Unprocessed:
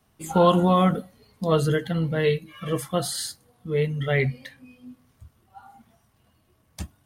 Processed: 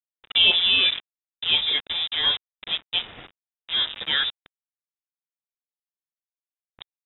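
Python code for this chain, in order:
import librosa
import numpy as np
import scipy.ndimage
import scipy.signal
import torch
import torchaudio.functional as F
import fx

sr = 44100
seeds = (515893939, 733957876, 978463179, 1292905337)

y = fx.highpass(x, sr, hz=130.0, slope=6)
y = np.where(np.abs(y) >= 10.0 ** (-26.5 / 20.0), y, 0.0)
y = fx.freq_invert(y, sr, carrier_hz=3700)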